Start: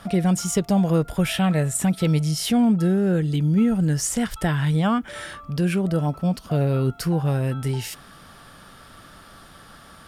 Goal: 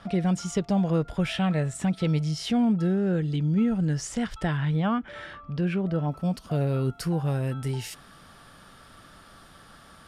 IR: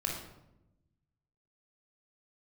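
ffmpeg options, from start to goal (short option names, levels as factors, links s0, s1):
-af "asetnsamples=n=441:p=0,asendcmd='4.57 lowpass f 3300;6.12 lowpass f 12000',lowpass=5500,volume=0.596"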